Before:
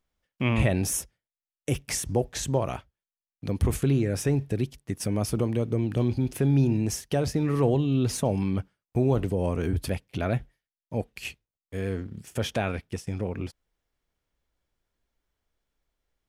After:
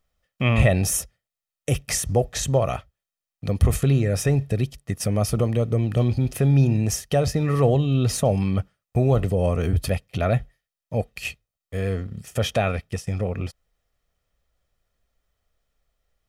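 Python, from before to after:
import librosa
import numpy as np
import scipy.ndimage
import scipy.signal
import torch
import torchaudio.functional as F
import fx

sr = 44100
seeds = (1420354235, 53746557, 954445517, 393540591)

y = x + 0.49 * np.pad(x, (int(1.6 * sr / 1000.0), 0))[:len(x)]
y = y * 10.0 ** (4.0 / 20.0)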